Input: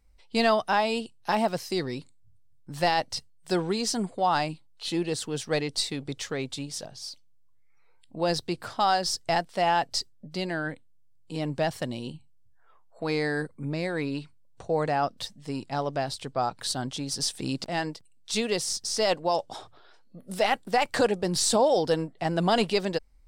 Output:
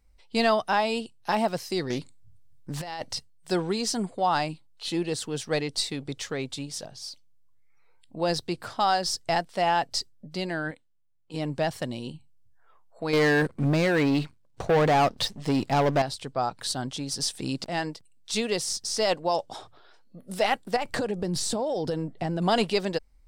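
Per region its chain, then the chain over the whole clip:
0:01.90–0:03.13: compressor whose output falls as the input rises −32 dBFS + highs frequency-modulated by the lows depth 0.22 ms
0:10.71–0:11.34: low-shelf EQ 330 Hz −11 dB + low-pass that shuts in the quiet parts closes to 2,300 Hz, open at −44 dBFS + one half of a high-frequency compander decoder only
0:13.13–0:16.02: high-shelf EQ 8,600 Hz −11.5 dB + leveller curve on the samples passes 3
0:20.76–0:22.42: low-shelf EQ 490 Hz +8.5 dB + downward compressor 12 to 1, threshold −24 dBFS
whole clip: no processing

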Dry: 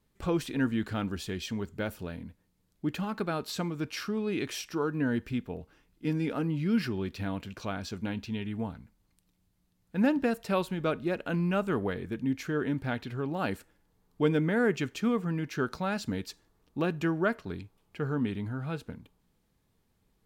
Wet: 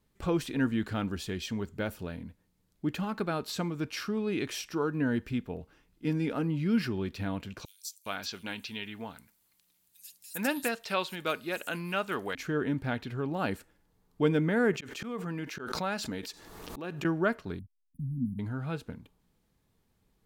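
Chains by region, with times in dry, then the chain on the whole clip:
0:07.65–0:12.35: spectral tilt +4 dB per octave + multiband delay without the direct sound highs, lows 410 ms, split 5,600 Hz
0:14.73–0:17.05: low-shelf EQ 190 Hz −11 dB + volume swells 244 ms + background raised ahead of every attack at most 37 dB per second
0:17.59–0:18.39: slack as between gear wheels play −40.5 dBFS + linear-phase brick-wall band-stop 270–9,300 Hz
whole clip: no processing

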